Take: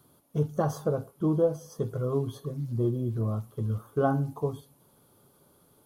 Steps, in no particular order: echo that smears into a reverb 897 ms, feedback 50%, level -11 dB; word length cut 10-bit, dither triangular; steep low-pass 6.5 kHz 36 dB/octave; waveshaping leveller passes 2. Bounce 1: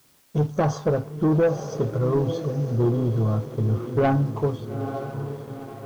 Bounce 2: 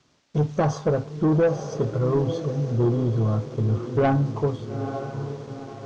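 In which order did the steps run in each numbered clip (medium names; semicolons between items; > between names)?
echo that smears into a reverb > waveshaping leveller > steep low-pass > word length cut; echo that smears into a reverb > word length cut > waveshaping leveller > steep low-pass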